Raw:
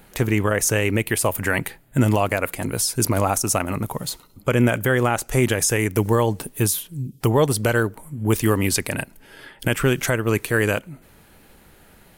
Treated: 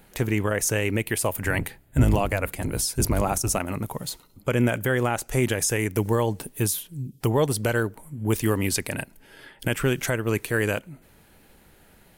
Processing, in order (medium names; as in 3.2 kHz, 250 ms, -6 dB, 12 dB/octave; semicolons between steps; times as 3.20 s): 1.43–3.58 s: octave divider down 1 oct, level +1 dB; peaking EQ 1.2 kHz -2.5 dB 0.37 oct; trim -4 dB